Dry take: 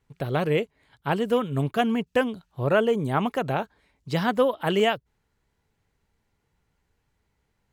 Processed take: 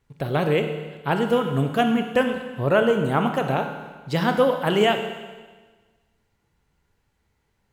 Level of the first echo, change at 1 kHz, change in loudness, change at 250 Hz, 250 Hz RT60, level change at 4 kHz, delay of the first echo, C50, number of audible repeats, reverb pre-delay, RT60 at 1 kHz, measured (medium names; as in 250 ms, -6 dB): no echo, +3.0 dB, +2.5 dB, +3.0 dB, 1.4 s, +3.5 dB, no echo, 7.0 dB, no echo, 26 ms, 1.4 s